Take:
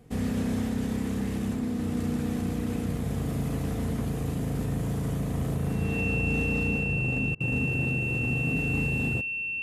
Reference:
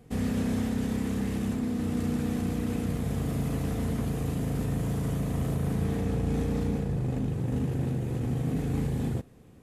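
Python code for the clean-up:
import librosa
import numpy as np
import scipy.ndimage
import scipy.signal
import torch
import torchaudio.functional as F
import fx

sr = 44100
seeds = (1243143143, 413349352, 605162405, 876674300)

y = fx.notch(x, sr, hz=2700.0, q=30.0)
y = fx.fix_interpolate(y, sr, at_s=(7.35,), length_ms=52.0)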